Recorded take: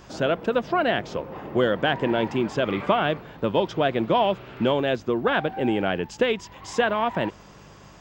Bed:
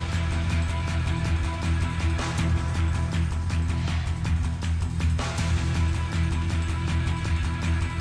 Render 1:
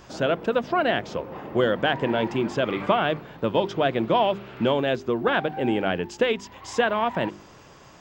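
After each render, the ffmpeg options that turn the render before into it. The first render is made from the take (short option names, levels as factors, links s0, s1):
-af "bandreject=f=50:t=h:w=4,bandreject=f=100:t=h:w=4,bandreject=f=150:t=h:w=4,bandreject=f=200:t=h:w=4,bandreject=f=250:t=h:w=4,bandreject=f=300:t=h:w=4,bandreject=f=350:t=h:w=4,bandreject=f=400:t=h:w=4"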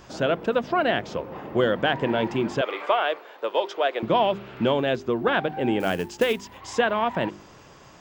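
-filter_complex "[0:a]asettb=1/sr,asplit=3[s0][s1][s2];[s0]atrim=end=2.614[s3];[s1]atrim=start=2.61:end=4.03,asetpts=PTS-STARTPTS,afade=t=in:d=0.004:c=qsin,afade=t=out:st=1.416:d=0.004:c=qsin,highpass=f=430:w=0.5412,highpass=f=430:w=1.3066[s4];[s2]atrim=start=4.026[s5];[s3][s4]acrossfade=d=0.004:c1=hsin:c2=qsin[s6];[s6][s5]acrossfade=d=0.004:c1=qsin:c2=hsin,asettb=1/sr,asplit=3[s7][s8][s9];[s7]atrim=end=5.804[s10];[s8]atrim=start=5.8:end=6.58,asetpts=PTS-STARTPTS,afade=t=in:d=0.004:c=qsin,afade=t=out:st=0.776:d=0.004:c=qsin,acrusher=bits=5:mode=log:mix=0:aa=0.000001[s11];[s9]atrim=start=6.576[s12];[s10][s11]acrossfade=d=0.004:c1=hsin:c2=qsin[s13];[s13][s12]acrossfade=d=0.004:c1=qsin:c2=hsin"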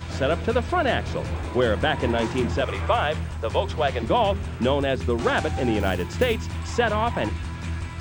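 -filter_complex "[1:a]volume=0.562[s0];[0:a][s0]amix=inputs=2:normalize=0"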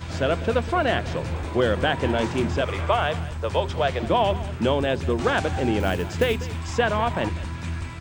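-af "aecho=1:1:197:0.141"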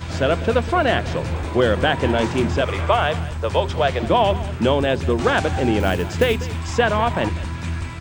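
-af "volume=1.58"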